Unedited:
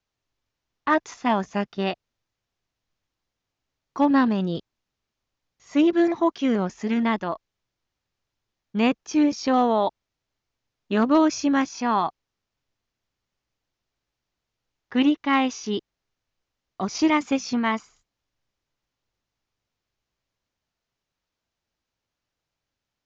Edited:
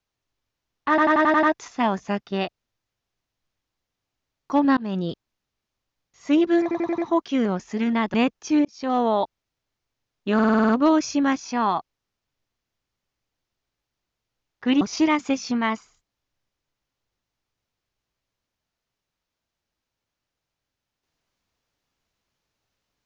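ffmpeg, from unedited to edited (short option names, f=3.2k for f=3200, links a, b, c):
-filter_complex "[0:a]asplit=22[a][b][c][d][e][f][g][h][i][j][k][l][m][n][o][p][q][r][s][t][u][v];[a]atrim=end=0.982[w];[b]atrim=start=0.888:end=0.982[x];[c]atrim=start=0.888:end=0.982[y];[d]atrim=start=0.888:end=0.982[z];[e]atrim=start=0.888:end=0.982[aa];[f]atrim=start=0.888:end=0.982[ab];[g]atrim=start=0.888:end=4.23,asetpts=PTS-STARTPTS,afade=t=out:st=3.338:d=0.004:c=hsin[ac];[h]atrim=start=4.23:end=6.172,asetpts=PTS-STARTPTS,afade=t=in:d=0.28:c=qsin[ad];[i]atrim=start=6.078:end=6.172[ae];[j]atrim=start=6.078:end=6.172[af];[k]atrim=start=6.078:end=6.172[ag];[l]atrim=start=6.078:end=7.242[ah];[m]atrim=start=8.778:end=9.29,asetpts=PTS-STARTPTS,afade=t=out:st=0.508:d=0.004:c=hsin[ai];[n]atrim=start=9.29:end=11.032,asetpts=PTS-STARTPTS,afade=t=in:d=0.4[aj];[o]atrim=start=10.978:end=11.032[ak];[p]atrim=start=10.978:end=11.032[al];[q]atrim=start=10.978:end=11.032[am];[r]atrim=start=10.978:end=11.032[an];[s]atrim=start=10.978:end=11.032[ao];[t]atrim=start=10.978:end=11.032[ap];[u]atrim=start=10.978:end=15.102[aq];[v]atrim=start=16.828[ar];[w][x]acrossfade=d=0.004:c1=hsin:c2=hsin[as];[as][y]acrossfade=d=0.004:c1=hsin:c2=hsin[at];[at][z]acrossfade=d=0.004:c1=hsin:c2=hsin[au];[au][aa]acrossfade=d=0.004:c1=hsin:c2=hsin[av];[av][ab]acrossfade=d=0.004:c1=hsin:c2=hsin[aw];[ac][ad]concat=n=2:v=0:a=1[ax];[aw][ax]acrossfade=d=0.004:c1=hsin:c2=hsin[ay];[ay][ae]acrossfade=d=0.004:c1=hsin:c2=hsin[az];[az][af]acrossfade=d=0.004:c1=hsin:c2=hsin[ba];[ba][ag]acrossfade=d=0.004:c1=hsin:c2=hsin[bb];[bb][ah]acrossfade=d=0.004:c1=hsin:c2=hsin[bc];[ai][aj]concat=n=2:v=0:a=1[bd];[bc][bd]acrossfade=d=0.004:c1=hsin:c2=hsin[be];[be][ak]acrossfade=d=0.004:c1=hsin:c2=hsin[bf];[bf][al]acrossfade=d=0.004:c1=hsin:c2=hsin[bg];[bg][am]acrossfade=d=0.004:c1=hsin:c2=hsin[bh];[bh][an]acrossfade=d=0.004:c1=hsin:c2=hsin[bi];[bi][ao]acrossfade=d=0.004:c1=hsin:c2=hsin[bj];[bj][ap]acrossfade=d=0.004:c1=hsin:c2=hsin[bk];[bk][aq]acrossfade=d=0.004:c1=hsin:c2=hsin[bl];[bl][ar]acrossfade=d=0.004:c1=hsin:c2=hsin"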